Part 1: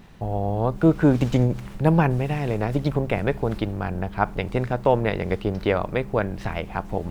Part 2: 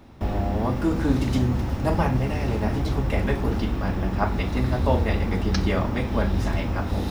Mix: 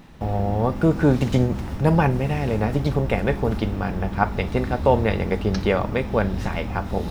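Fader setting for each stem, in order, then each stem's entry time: +0.5, -4.0 dB; 0.00, 0.00 s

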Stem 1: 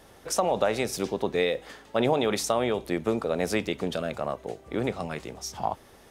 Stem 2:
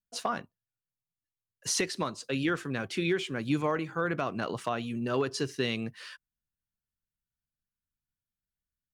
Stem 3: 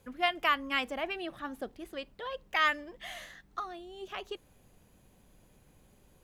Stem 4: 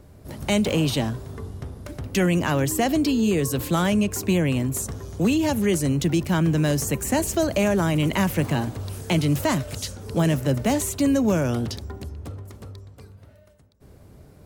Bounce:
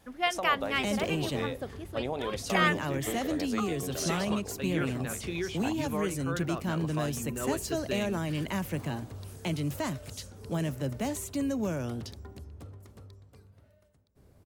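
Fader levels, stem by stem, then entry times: -10.5, -5.5, +0.5, -10.5 dB; 0.00, 2.30, 0.00, 0.35 s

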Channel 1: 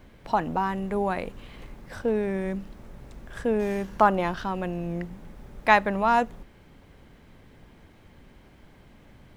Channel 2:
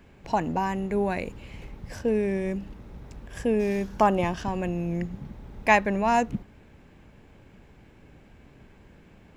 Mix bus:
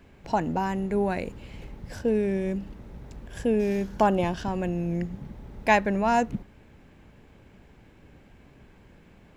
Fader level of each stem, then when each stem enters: -11.0, -1.0 dB; 0.00, 0.00 s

